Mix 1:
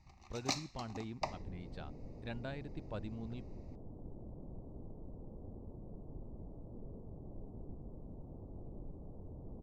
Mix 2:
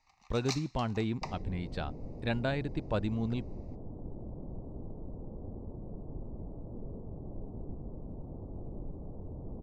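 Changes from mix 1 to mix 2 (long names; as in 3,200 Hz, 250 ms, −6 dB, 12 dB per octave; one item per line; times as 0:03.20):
speech +12.0 dB
first sound: add high-pass filter 760 Hz 24 dB per octave
second sound +6.5 dB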